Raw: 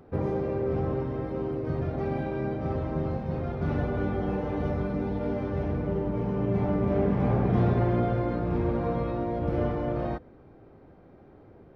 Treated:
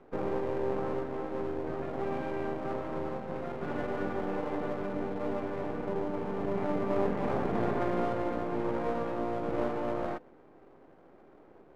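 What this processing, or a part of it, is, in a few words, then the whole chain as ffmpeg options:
crystal radio: -af "highpass=280,lowpass=2.7k,aeval=exprs='if(lt(val(0),0),0.251*val(0),val(0))':c=same,volume=2dB"

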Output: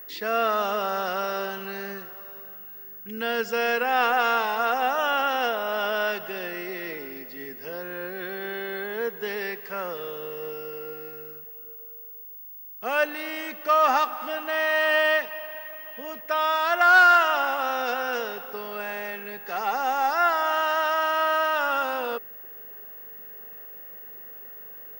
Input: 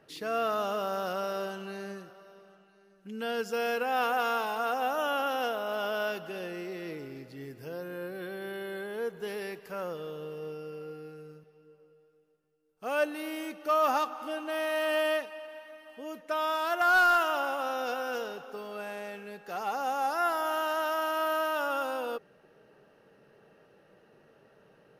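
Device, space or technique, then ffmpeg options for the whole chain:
old television with a line whistle: -af "highpass=f=210:w=0.5412,highpass=f=210:w=1.3066,equalizer=f=310:t=q:w=4:g=-8,equalizer=f=560:t=q:w=4:g=-4,equalizer=f=1.9k:t=q:w=4:g=7,equalizer=f=6.8k:t=q:w=4:g=-3,lowpass=f=7.9k:w=0.5412,lowpass=f=7.9k:w=1.3066,aeval=exprs='val(0)+0.00501*sin(2*PI*15625*n/s)':c=same,volume=6.5dB"

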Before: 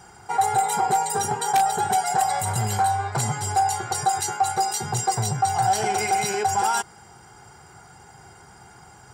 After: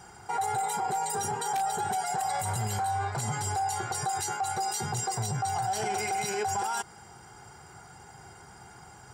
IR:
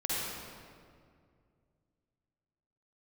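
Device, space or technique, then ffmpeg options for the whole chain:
stacked limiters: -af "alimiter=limit=-15.5dB:level=0:latency=1:release=151,alimiter=limit=-20.5dB:level=0:latency=1:release=26,volume=-2dB"

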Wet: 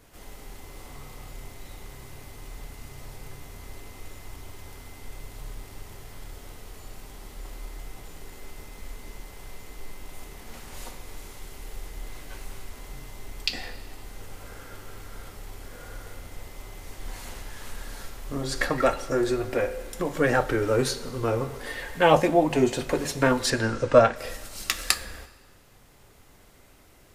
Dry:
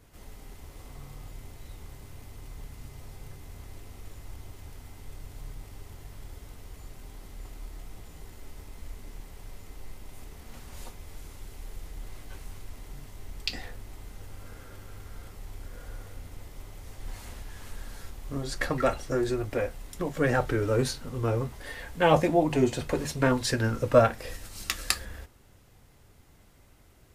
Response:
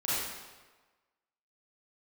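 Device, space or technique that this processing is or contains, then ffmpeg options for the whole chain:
ducked reverb: -filter_complex "[0:a]asettb=1/sr,asplit=3[a][b][c];[a]atrim=end=23.504[d];[b]atrim=start=23.5:end=24.16,asetpts=PTS-STARTPTS,afade=t=in:d=0.004:c=qsin,afade=t=out:st=0.656:d=0.004:c=qsin,lowpass=f=7.7k:w=0.5412,lowpass=f=7.7k:w=1.3066[e];[c]atrim=start=24.156[f];[d][e]acrossfade=d=0.004:c1=hsin:c2=qsin[g];[g][f]acrossfade=d=0.004:c1=qsin:c2=hsin,equalizer=f=77:w=0.49:g=-7.5,asplit=3[h][i][j];[1:a]atrim=start_sample=2205[k];[i][k]afir=irnorm=-1:irlink=0[l];[j]apad=whole_len=1197141[m];[l][m]sidechaincompress=threshold=-30dB:ratio=8:attack=8.2:release=1140,volume=-12dB[n];[h][n]amix=inputs=2:normalize=0,volume=3.5dB"

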